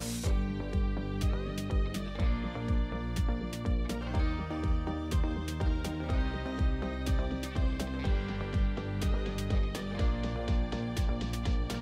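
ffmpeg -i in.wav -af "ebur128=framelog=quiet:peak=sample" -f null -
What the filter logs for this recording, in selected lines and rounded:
Integrated loudness:
  I:         -33.4 LUFS
  Threshold: -43.4 LUFS
Loudness range:
  LRA:         0.5 LU
  Threshold: -53.4 LUFS
  LRA low:   -33.6 LUFS
  LRA high:  -33.1 LUFS
Sample peak:
  Peak:      -19.1 dBFS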